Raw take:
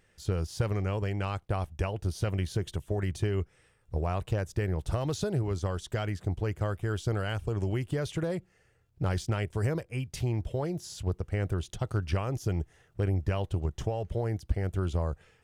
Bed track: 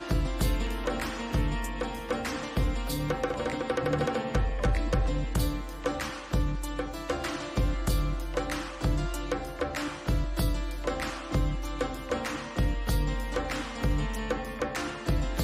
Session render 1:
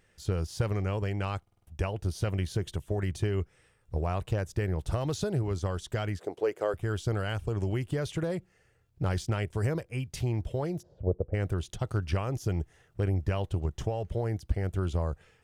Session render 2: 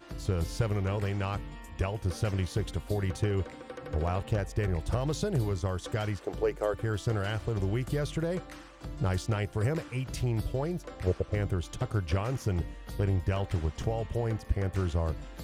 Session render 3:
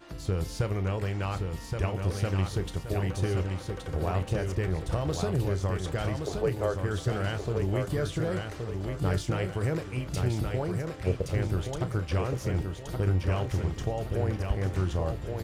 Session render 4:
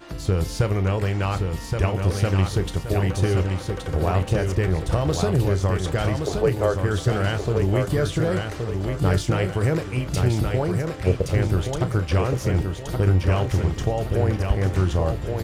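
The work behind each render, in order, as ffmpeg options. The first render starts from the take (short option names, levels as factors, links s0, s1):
-filter_complex "[0:a]asettb=1/sr,asplit=3[s0][s1][s2];[s0]atrim=end=6.194[s3];[s1]atrim=start=6.19:end=6.74,asetpts=PTS-STARTPTS,afade=t=in:d=0.004:c=qsin,afade=t=out:st=0.546:d=0.004:c=qsin,highpass=f=440:t=q:w=2.7[s4];[s2]atrim=start=6.736[s5];[s3][s4]acrossfade=d=0.004:c1=hsin:c2=qsin[s6];[s6][s5]acrossfade=d=0.004:c1=qsin:c2=hsin,asplit=3[s7][s8][s9];[s7]afade=t=out:st=10.81:d=0.02[s10];[s8]lowpass=f=550:t=q:w=4.1,afade=t=in:st=10.81:d=0.02,afade=t=out:st=11.33:d=0.02[s11];[s9]afade=t=in:st=11.33:d=0.02[s12];[s10][s11][s12]amix=inputs=3:normalize=0,asplit=6[s13][s14][s15][s16][s17][s18];[s13]atrim=end=1.472[s19];[s14]atrim=start=1.418:end=1.472[s20];[s15]atrim=start=1.418:end=1.472[s21];[s16]atrim=start=1.418:end=1.472[s22];[s17]atrim=start=1.418:end=1.472[s23];[s18]atrim=start=1.668[s24];[s19][s20]acrossfade=d=0.004:c1=hsin:c2=hsin[s25];[s25][s21]acrossfade=d=0.004:c1=hsin:c2=hsin[s26];[s26][s22]acrossfade=d=0.004:c1=hsin:c2=hsin[s27];[s27][s23]acrossfade=d=0.004:c1=hsin:c2=hsin[s28];[s28][s24]acrossfade=d=0.004:c1=hsin:c2=hsin"
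-filter_complex "[1:a]volume=0.211[s0];[0:a][s0]amix=inputs=2:normalize=0"
-filter_complex "[0:a]asplit=2[s0][s1];[s1]adelay=32,volume=0.237[s2];[s0][s2]amix=inputs=2:normalize=0,aecho=1:1:1122|2244|3366|4488|5610:0.562|0.219|0.0855|0.0334|0.013"
-af "volume=2.37"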